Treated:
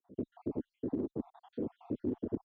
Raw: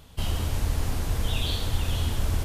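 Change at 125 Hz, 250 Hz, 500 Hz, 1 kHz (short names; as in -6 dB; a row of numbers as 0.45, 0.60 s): -21.0, +1.5, -0.5, -17.0 dB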